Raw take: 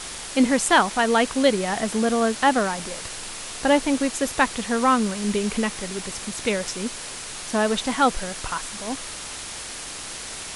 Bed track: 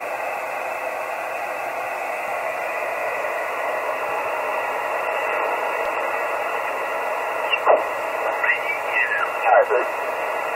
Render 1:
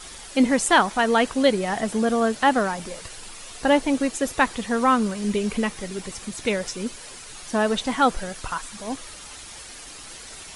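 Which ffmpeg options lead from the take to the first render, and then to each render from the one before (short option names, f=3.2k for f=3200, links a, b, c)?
-af "afftdn=nr=9:nf=-35"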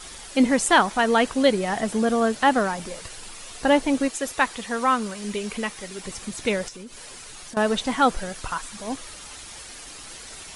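-filter_complex "[0:a]asettb=1/sr,asplit=3[a][b][c];[a]atrim=end=4.084[d];[b]atrim=start=4.08:end=6.04,asetpts=PTS-STARTPTS,afade=t=in:d=0.004:c=qsin,afade=t=out:st=1.956:d=0.004:c=qsin,lowshelf=f=430:g=-8.5[e];[c]atrim=start=6.036[f];[d][e]acrossfade=d=0.004:c1=hsin:c2=qsin[g];[g][f]acrossfade=d=0.004:c1=qsin:c2=hsin,asettb=1/sr,asplit=3[h][i][j];[h]atrim=end=6.684[k];[i]atrim=start=6.68:end=7.57,asetpts=PTS-STARTPTS,afade=t=in:d=0.004:c=qsin,afade=t=out:st=0.886:d=0.004:c=qsin,acompressor=threshold=-36dB:ratio=8:attack=3.2:release=140:knee=1:detection=peak[l];[j]atrim=start=7.566[m];[k][l]acrossfade=d=0.004:c1=hsin:c2=qsin[n];[n][m]acrossfade=d=0.004:c1=qsin:c2=hsin"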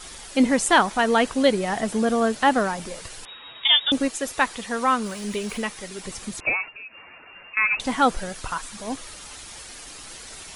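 -filter_complex "[0:a]asettb=1/sr,asplit=3[a][b][c];[a]atrim=end=3.254[d];[b]atrim=start=3.25:end=3.92,asetpts=PTS-STARTPTS,afade=t=in:d=0.004:c=qsin,afade=t=out:st=0.666:d=0.004:c=qsin,lowpass=f=3.2k:t=q:w=0.5098,lowpass=f=3.2k:t=q:w=0.6013,lowpass=f=3.2k:t=q:w=0.9,lowpass=f=3.2k:t=q:w=2.563,afreqshift=-3800[e];[c]atrim=start=3.916[f];[d][e]acrossfade=d=0.004:c1=hsin:c2=qsin[g];[g][f]acrossfade=d=0.004:c1=qsin:c2=hsin,asettb=1/sr,asplit=3[h][i][j];[h]atrim=end=5.044[k];[i]atrim=start=5.04:end=5.62,asetpts=PTS-STARTPTS,afade=t=in:d=0.004:c=qsin,afade=t=out:st=0.576:d=0.004:c=qsin,aeval=exprs='val(0)+0.5*0.00794*sgn(val(0))':c=same[l];[j]atrim=start=5.616[m];[k][l]acrossfade=d=0.004:c1=hsin:c2=qsin[n];[n][m]acrossfade=d=0.004:c1=qsin:c2=hsin,asettb=1/sr,asplit=3[o][p][q];[o]atrim=end=6.404[r];[p]atrim=start=6.4:end=7.8,asetpts=PTS-STARTPTS,afade=t=in:d=0.004:c=qsin,afade=t=out:st=1.396:d=0.004:c=qsin,lowpass=f=2.4k:t=q:w=0.5098,lowpass=f=2.4k:t=q:w=0.6013,lowpass=f=2.4k:t=q:w=0.9,lowpass=f=2.4k:t=q:w=2.563,afreqshift=-2800[s];[q]atrim=start=7.796[t];[r][s]acrossfade=d=0.004:c1=hsin:c2=qsin[u];[u][t]acrossfade=d=0.004:c1=qsin:c2=hsin"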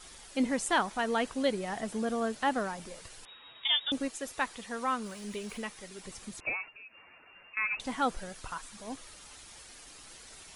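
-af "volume=-10.5dB"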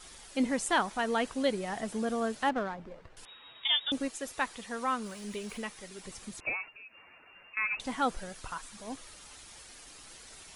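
-filter_complex "[0:a]asettb=1/sr,asplit=3[a][b][c];[a]atrim=end=2.494[d];[b]atrim=start=2.49:end=3.17,asetpts=PTS-STARTPTS,afade=t=in:d=0.004:c=qsin,afade=t=out:st=0.676:d=0.004:c=qsin,adynamicsmooth=sensitivity=5:basefreq=1.3k[e];[c]atrim=start=3.166[f];[d][e]acrossfade=d=0.004:c1=hsin:c2=qsin[g];[g][f]acrossfade=d=0.004:c1=qsin:c2=hsin"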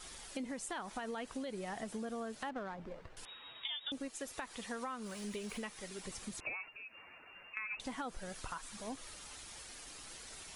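-af "alimiter=limit=-24dB:level=0:latency=1:release=93,acompressor=threshold=-39dB:ratio=6"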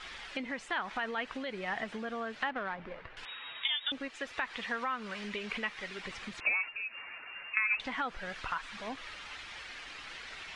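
-af "lowpass=3.9k,equalizer=f=2.1k:w=0.54:g=13"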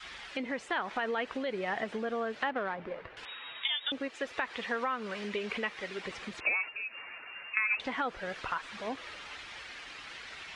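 -af "adynamicequalizer=threshold=0.00251:dfrequency=450:dqfactor=1:tfrequency=450:tqfactor=1:attack=5:release=100:ratio=0.375:range=3.5:mode=boostabove:tftype=bell,highpass=42"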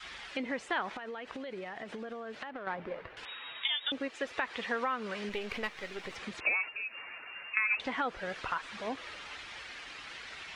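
-filter_complex "[0:a]asettb=1/sr,asplit=3[a][b][c];[a]atrim=end=0.924[d];[b]atrim=start=0.92:end=2.67,asetpts=PTS-STARTPTS,afade=t=in:d=0.004:c=qsin,afade=t=out:st=1.746:d=0.004:c=qsin,acompressor=threshold=-37dB:ratio=12:attack=3.2:release=140:knee=1:detection=peak[e];[c]atrim=start=2.666[f];[d][e]acrossfade=d=0.004:c1=hsin:c2=qsin[g];[g][f]acrossfade=d=0.004:c1=qsin:c2=hsin,asettb=1/sr,asplit=3[h][i][j];[h]atrim=end=5.294[k];[i]atrim=start=5.29:end=6.16,asetpts=PTS-STARTPTS,afade=t=in:d=0.004:c=qsin,afade=t=out:st=0.866:d=0.004:c=qsin,aeval=exprs='if(lt(val(0),0),0.447*val(0),val(0))':c=same[l];[j]atrim=start=6.156[m];[k][l]acrossfade=d=0.004:c1=hsin:c2=qsin[n];[n][m]acrossfade=d=0.004:c1=qsin:c2=hsin"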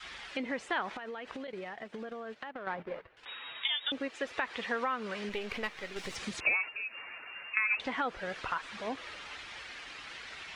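-filter_complex "[0:a]asettb=1/sr,asplit=3[a][b][c];[a]atrim=end=1.474[d];[b]atrim=start=1.47:end=3.26,asetpts=PTS-STARTPTS,afade=t=in:d=0.004:c=qsin,afade=t=out:st=1.786:d=0.004:c=qsin,agate=range=-13dB:threshold=-45dB:ratio=16:release=100:detection=peak[e];[c]atrim=start=3.256[f];[d][e]acrossfade=d=0.004:c1=hsin:c2=qsin[g];[g][f]acrossfade=d=0.004:c1=qsin:c2=hsin,asettb=1/sr,asplit=3[h][i][j];[h]atrim=end=5.964[k];[i]atrim=start=5.96:end=6.57,asetpts=PTS-STARTPTS,afade=t=in:d=0.004:c=qsin,afade=t=out:st=0.606:d=0.004:c=qsin,bass=f=250:g=5,treble=f=4k:g=11[l];[j]atrim=start=6.566[m];[k][l]acrossfade=d=0.004:c1=hsin:c2=qsin[n];[n][m]acrossfade=d=0.004:c1=qsin:c2=hsin"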